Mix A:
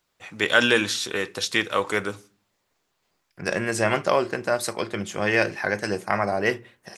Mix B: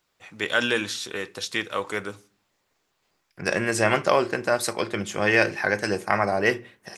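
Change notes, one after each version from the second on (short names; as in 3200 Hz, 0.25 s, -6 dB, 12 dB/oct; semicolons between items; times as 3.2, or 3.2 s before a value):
first voice -4.5 dB; second voice: send on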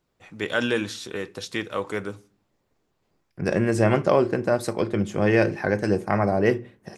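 first voice: add tilt shelf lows -3.5 dB, about 720 Hz; master: add tilt shelf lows +8.5 dB, about 690 Hz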